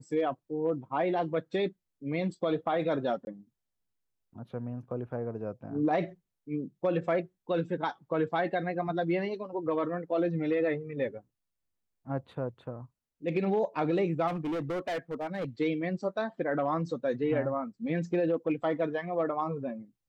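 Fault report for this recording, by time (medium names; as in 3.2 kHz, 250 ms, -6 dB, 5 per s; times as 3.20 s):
3.25–3.27 s: dropout 21 ms
14.27–15.45 s: clipped -29.5 dBFS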